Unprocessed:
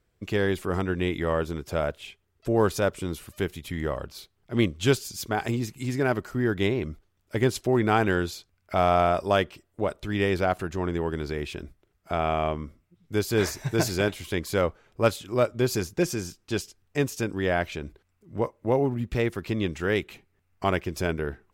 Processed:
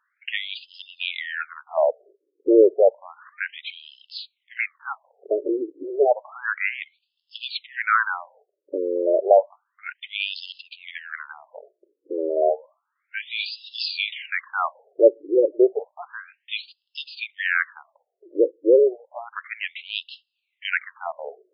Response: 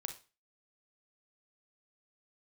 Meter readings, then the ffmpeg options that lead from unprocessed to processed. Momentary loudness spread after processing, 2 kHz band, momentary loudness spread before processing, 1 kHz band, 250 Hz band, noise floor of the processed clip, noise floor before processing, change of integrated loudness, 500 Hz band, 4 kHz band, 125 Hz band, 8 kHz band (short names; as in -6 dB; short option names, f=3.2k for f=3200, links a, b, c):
20 LU, +4.5 dB, 10 LU, 0.0 dB, -2.5 dB, -79 dBFS, -72 dBFS, +3.5 dB, +4.5 dB, +5.0 dB, under -40 dB, under -40 dB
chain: -filter_complex "[0:a]asplit=2[a][b];[b]volume=16.5dB,asoftclip=hard,volume=-16.5dB,volume=-5dB[c];[a][c]amix=inputs=2:normalize=0,afftfilt=real='re*between(b*sr/1024,390*pow(3800/390,0.5+0.5*sin(2*PI*0.31*pts/sr))/1.41,390*pow(3800/390,0.5+0.5*sin(2*PI*0.31*pts/sr))*1.41)':imag='im*between(b*sr/1024,390*pow(3800/390,0.5+0.5*sin(2*PI*0.31*pts/sr))/1.41,390*pow(3800/390,0.5+0.5*sin(2*PI*0.31*pts/sr))*1.41)':win_size=1024:overlap=0.75,volume=6.5dB"